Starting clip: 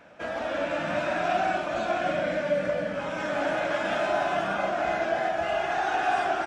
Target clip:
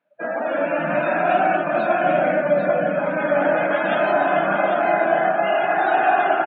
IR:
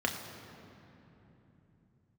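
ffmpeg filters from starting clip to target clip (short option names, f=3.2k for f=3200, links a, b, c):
-af "afftdn=nr=32:nf=-35,aecho=1:1:794:0.473,afftfilt=real='re*between(b*sr/4096,130,4500)':imag='im*between(b*sr/4096,130,4500)':win_size=4096:overlap=0.75,volume=7.5dB"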